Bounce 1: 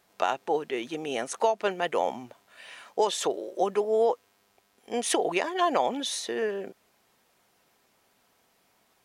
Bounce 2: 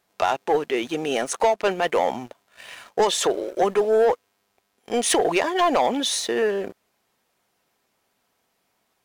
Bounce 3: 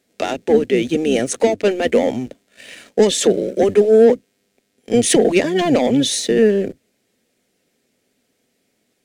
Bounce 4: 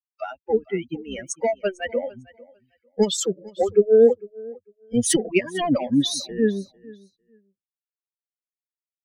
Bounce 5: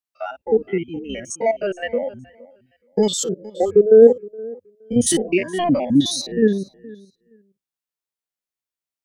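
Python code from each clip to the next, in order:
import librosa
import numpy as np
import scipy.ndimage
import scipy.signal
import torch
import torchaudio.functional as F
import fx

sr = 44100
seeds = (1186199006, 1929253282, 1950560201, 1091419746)

y1 = fx.leveller(x, sr, passes=2)
y2 = fx.octave_divider(y1, sr, octaves=1, level_db=-2.0)
y2 = fx.graphic_eq_10(y2, sr, hz=(250, 500, 1000, 2000, 4000, 8000), db=(12, 9, -12, 6, 3, 7))
y2 = F.gain(torch.from_numpy(y2), -1.5).numpy()
y3 = fx.bin_expand(y2, sr, power=3.0)
y3 = fx.echo_feedback(y3, sr, ms=450, feedback_pct=17, wet_db=-22.0)
y4 = fx.spec_steps(y3, sr, hold_ms=50)
y4 = F.gain(torch.from_numpy(y4), 5.0).numpy()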